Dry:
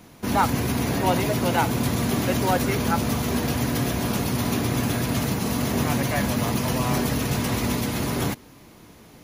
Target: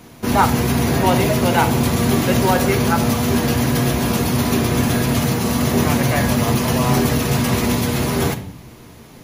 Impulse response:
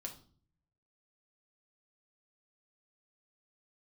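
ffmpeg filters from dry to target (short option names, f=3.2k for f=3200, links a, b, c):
-filter_complex "[0:a]asplit=2[a][b];[1:a]atrim=start_sample=2205,asetrate=30870,aresample=44100[c];[b][c]afir=irnorm=-1:irlink=0,volume=2dB[d];[a][d]amix=inputs=2:normalize=0"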